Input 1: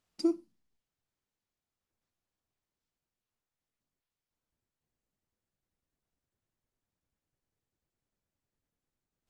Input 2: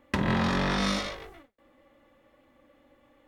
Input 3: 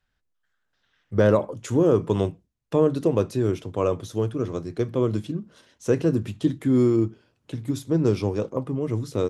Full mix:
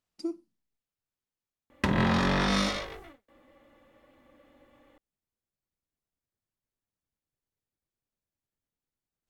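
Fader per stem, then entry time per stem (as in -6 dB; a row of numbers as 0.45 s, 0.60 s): -5.5 dB, +1.0 dB, mute; 0.00 s, 1.70 s, mute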